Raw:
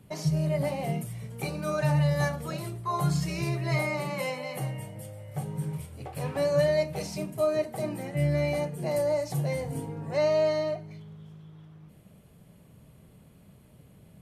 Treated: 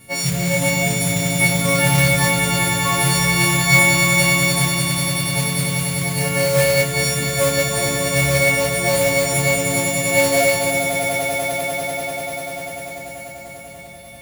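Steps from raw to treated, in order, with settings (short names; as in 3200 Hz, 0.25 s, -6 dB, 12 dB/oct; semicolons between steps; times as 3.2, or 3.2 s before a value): frequency quantiser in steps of 4 st; on a send: swelling echo 98 ms, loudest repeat 8, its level -5.5 dB; on the sum: modulation noise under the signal 10 dB; bell 2200 Hz +11 dB 0.21 oct; gain +6.5 dB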